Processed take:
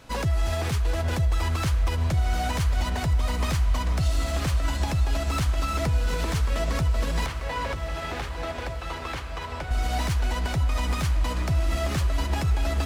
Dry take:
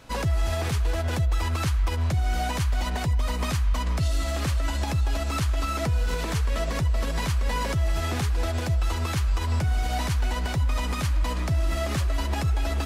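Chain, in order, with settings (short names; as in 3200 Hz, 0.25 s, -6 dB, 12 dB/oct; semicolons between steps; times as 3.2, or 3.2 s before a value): tracing distortion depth 0.023 ms; 7.26–9.71 three-band isolator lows -15 dB, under 330 Hz, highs -12 dB, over 3900 Hz; diffused feedback echo 0.908 s, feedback 67%, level -13 dB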